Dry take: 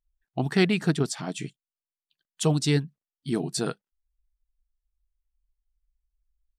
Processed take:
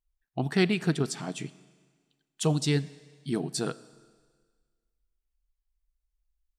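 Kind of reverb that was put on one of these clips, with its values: Schroeder reverb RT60 1.6 s, combs from 29 ms, DRR 18 dB; gain -2.5 dB

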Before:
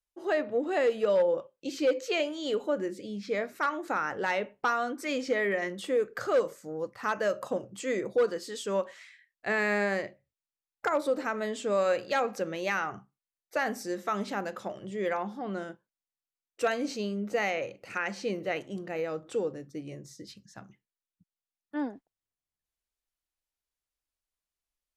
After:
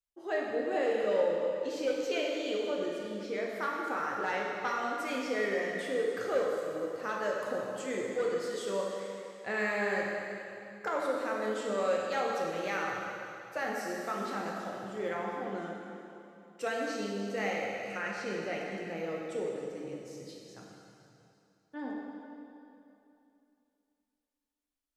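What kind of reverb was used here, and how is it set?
plate-style reverb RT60 2.8 s, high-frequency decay 0.95×, DRR -2.5 dB; gain -7 dB

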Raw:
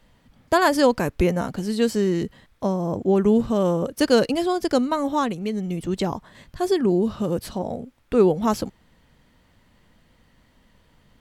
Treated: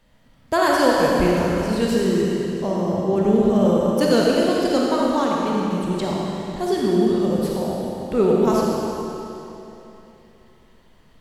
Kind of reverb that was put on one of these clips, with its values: digital reverb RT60 3.1 s, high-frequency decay 0.95×, pre-delay 5 ms, DRR -4 dB; gain -2.5 dB

